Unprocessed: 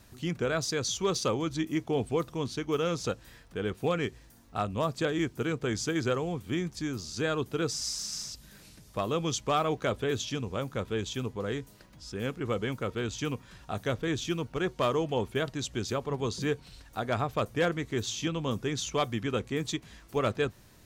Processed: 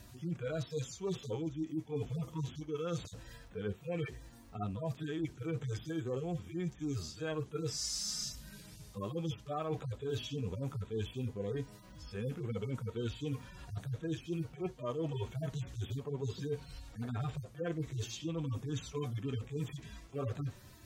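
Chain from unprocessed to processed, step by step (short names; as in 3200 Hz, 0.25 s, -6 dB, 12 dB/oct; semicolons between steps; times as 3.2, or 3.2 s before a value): median-filter separation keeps harmonic; reverse; compressor 10:1, threshold -38 dBFS, peak gain reduction 14.5 dB; reverse; gain +4 dB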